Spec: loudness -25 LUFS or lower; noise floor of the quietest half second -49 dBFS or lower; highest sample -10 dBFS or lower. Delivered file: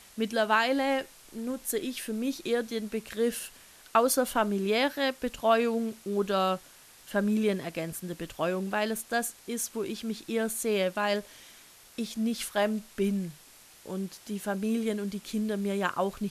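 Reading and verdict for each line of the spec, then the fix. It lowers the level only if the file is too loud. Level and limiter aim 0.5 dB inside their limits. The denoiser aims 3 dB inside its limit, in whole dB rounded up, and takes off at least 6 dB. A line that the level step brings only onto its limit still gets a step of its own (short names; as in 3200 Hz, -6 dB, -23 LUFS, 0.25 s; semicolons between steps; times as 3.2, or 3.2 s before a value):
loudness -30.0 LUFS: OK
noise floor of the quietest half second -54 dBFS: OK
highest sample -11.5 dBFS: OK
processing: none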